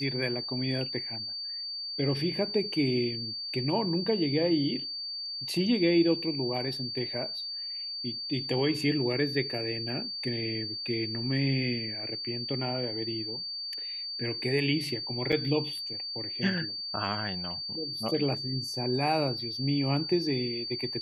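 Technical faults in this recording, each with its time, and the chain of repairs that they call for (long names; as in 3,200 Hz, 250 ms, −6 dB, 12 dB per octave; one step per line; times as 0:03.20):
whistle 4,600 Hz −34 dBFS
0:15.32–0:15.33: drop-out 5.5 ms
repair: notch filter 4,600 Hz, Q 30
repair the gap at 0:15.32, 5.5 ms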